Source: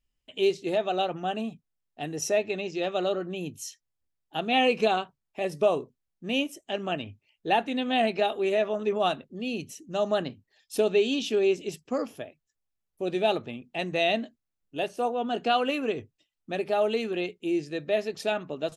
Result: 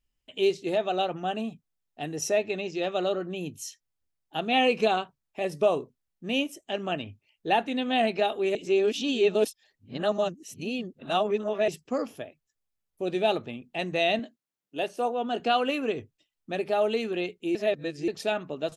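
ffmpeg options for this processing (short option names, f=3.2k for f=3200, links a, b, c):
-filter_complex "[0:a]asettb=1/sr,asplit=3[a][b][c];[a]atrim=end=14.194[d];[b]atrim=start=14.19:end=15.4,asetpts=PTS-STARTPTS,afade=t=in:d=0.004:c=qsin,afade=t=out:st=1.206:d=0.004:c=qsin,highpass=180[e];[c]atrim=start=15.396[f];[d][e]acrossfade=d=0.004:c1=hsin:c2=qsin[g];[g][f]acrossfade=d=0.004:c1=qsin:c2=hsin,asplit=5[h][i][j][k][l];[h]atrim=end=8.552[m];[i]atrim=start=8.548:end=11.682,asetpts=PTS-STARTPTS,areverse[n];[j]atrim=start=11.678:end=17.552[o];[k]atrim=start=17.548:end=18.082,asetpts=PTS-STARTPTS,areverse[p];[l]atrim=start=18.078[q];[m][n]acrossfade=d=0.004:c1=hsin:c2=hsin[r];[r][o]acrossfade=d=0.004:c1=hsin:c2=hsin[s];[s][p]acrossfade=d=0.004:c1=hsin:c2=hsin[t];[t][q]acrossfade=d=0.004:c1=hsin:c2=hsin"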